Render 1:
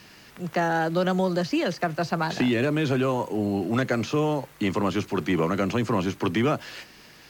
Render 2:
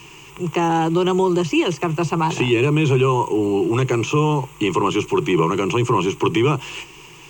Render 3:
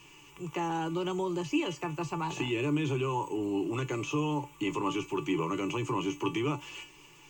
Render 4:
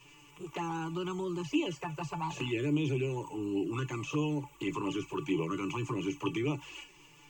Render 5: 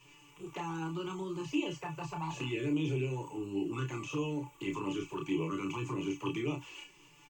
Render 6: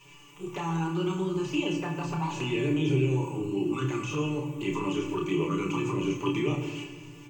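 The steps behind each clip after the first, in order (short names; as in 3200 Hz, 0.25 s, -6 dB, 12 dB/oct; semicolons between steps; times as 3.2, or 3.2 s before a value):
ripple EQ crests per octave 0.7, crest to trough 17 dB; in parallel at +0.5 dB: limiter -17 dBFS, peak gain reduction 9 dB; on the sum: gain -1.5 dB
resonator 290 Hz, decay 0.19 s, harmonics all, mix 80%; gain -3 dB
envelope flanger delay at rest 8.1 ms, full sweep at -25.5 dBFS
doubler 31 ms -5 dB; gain -3.5 dB
shoebox room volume 1800 m³, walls mixed, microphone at 1.2 m; gain +5 dB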